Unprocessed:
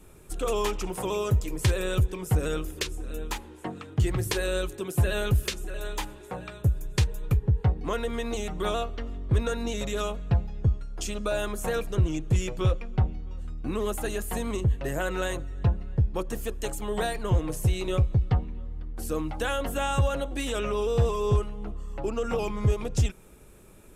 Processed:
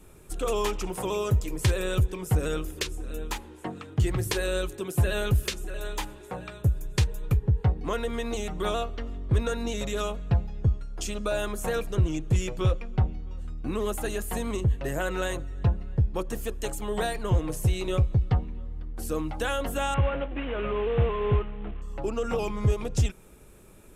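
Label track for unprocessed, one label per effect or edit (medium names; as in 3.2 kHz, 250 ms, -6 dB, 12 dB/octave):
19.940000	21.820000	CVSD coder 16 kbps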